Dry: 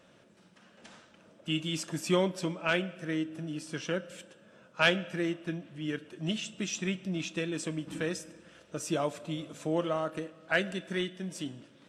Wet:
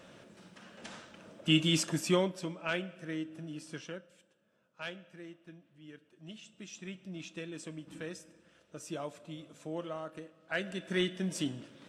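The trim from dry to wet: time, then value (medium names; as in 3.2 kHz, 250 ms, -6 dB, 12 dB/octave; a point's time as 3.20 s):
1.77 s +5.5 dB
2.39 s -5.5 dB
3.74 s -5.5 dB
4.14 s -17 dB
6.13 s -17 dB
7.24 s -9 dB
10.45 s -9 dB
11.09 s +3.5 dB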